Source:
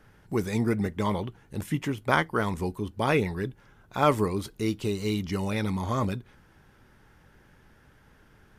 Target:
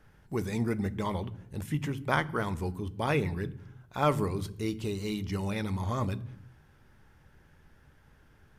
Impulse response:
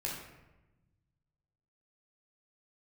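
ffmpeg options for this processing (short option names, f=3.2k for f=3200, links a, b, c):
-filter_complex "[0:a]asplit=2[a][b];[b]bass=f=250:g=14,treble=f=4k:g=3[c];[1:a]atrim=start_sample=2205,afade=t=out:st=0.42:d=0.01,atrim=end_sample=18963[d];[c][d]afir=irnorm=-1:irlink=0,volume=-18.5dB[e];[a][e]amix=inputs=2:normalize=0,volume=-5dB"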